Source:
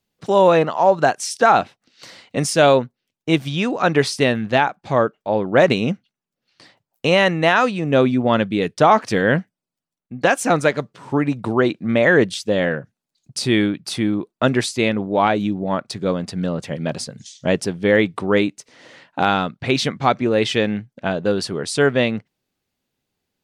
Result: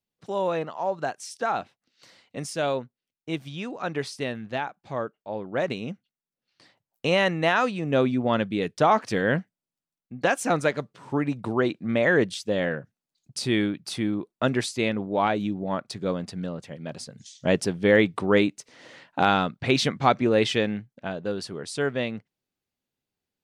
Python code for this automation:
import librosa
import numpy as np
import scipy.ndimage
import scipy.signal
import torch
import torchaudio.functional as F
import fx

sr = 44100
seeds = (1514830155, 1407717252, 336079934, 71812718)

y = fx.gain(x, sr, db=fx.line((5.92, -13.0), (7.11, -6.5), (16.22, -6.5), (16.78, -13.0), (17.55, -3.0), (20.38, -3.0), (21.08, -10.0)))